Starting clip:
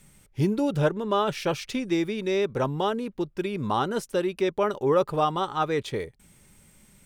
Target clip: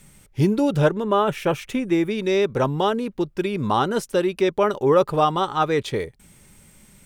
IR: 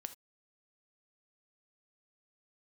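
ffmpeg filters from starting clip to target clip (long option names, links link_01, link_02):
-filter_complex "[0:a]asettb=1/sr,asplit=3[link_01][link_02][link_03];[link_01]atrim=end=1.044[link_04];[link_02]atrim=start=1.04:end=2.11,asetpts=PTS-STARTPTS,afade=type=in:duration=0.004:curve=qsin,afade=type=out:start_time=1.066:duration=0.004:curve=qsin,equalizer=frequency=4700:width_type=o:width=0.84:gain=-12.5[link_05];[link_03]atrim=start=2.106[link_06];[link_04][link_05]acrossfade=duration=0.004:curve1=hsin:curve2=qsin[link_07];[link_07][link_06]acrossfade=duration=0.004:curve1=qsin:curve2=hsin,volume=5dB"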